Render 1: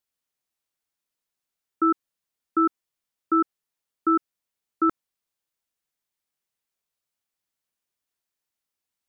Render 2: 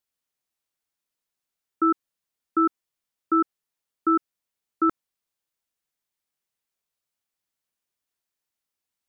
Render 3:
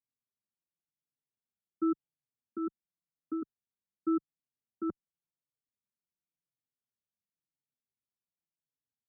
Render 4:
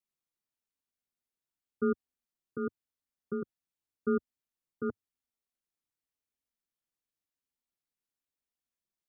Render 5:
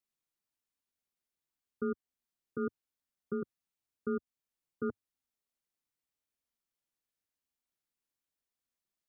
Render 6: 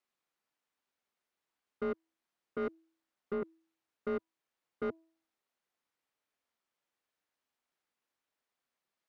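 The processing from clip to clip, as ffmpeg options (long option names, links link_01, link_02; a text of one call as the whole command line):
ffmpeg -i in.wav -af anull out.wav
ffmpeg -i in.wav -filter_complex "[0:a]bandpass=frequency=150:width_type=q:width=1.3:csg=0,asplit=2[link_01][link_02];[link_02]adelay=4.3,afreqshift=-0.91[link_03];[link_01][link_03]amix=inputs=2:normalize=1,volume=2.5dB" out.wav
ffmpeg -i in.wav -af "aeval=exprs='val(0)*sin(2*PI*100*n/s)':channel_layout=same,volume=3.5dB" out.wav
ffmpeg -i in.wav -af "alimiter=level_in=0.5dB:limit=-24dB:level=0:latency=1:release=364,volume=-0.5dB" out.wav
ffmpeg -i in.wav -filter_complex "[0:a]bandreject=frequency=325.8:width_type=h:width=4,bandreject=frequency=651.6:width_type=h:width=4,bandreject=frequency=977.4:width_type=h:width=4,asplit=2[link_01][link_02];[link_02]highpass=frequency=720:poles=1,volume=20dB,asoftclip=type=tanh:threshold=-24dB[link_03];[link_01][link_03]amix=inputs=2:normalize=0,lowpass=frequency=1300:poles=1,volume=-6dB,volume=-2dB" out.wav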